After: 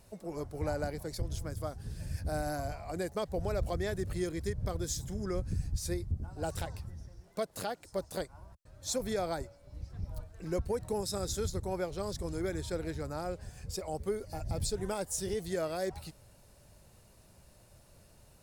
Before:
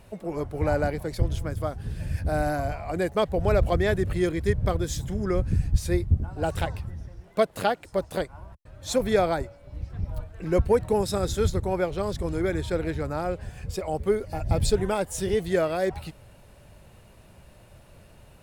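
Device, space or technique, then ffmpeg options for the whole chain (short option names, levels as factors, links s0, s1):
over-bright horn tweeter: -af "highshelf=f=3900:t=q:w=1.5:g=7,alimiter=limit=0.168:level=0:latency=1:release=117,volume=0.376"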